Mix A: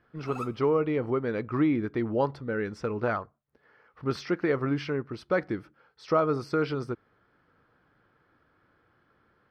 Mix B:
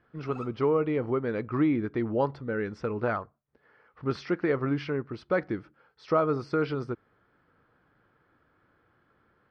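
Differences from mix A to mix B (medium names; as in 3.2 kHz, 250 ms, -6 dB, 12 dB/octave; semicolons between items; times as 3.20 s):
background -4.5 dB; master: add distance through air 100 m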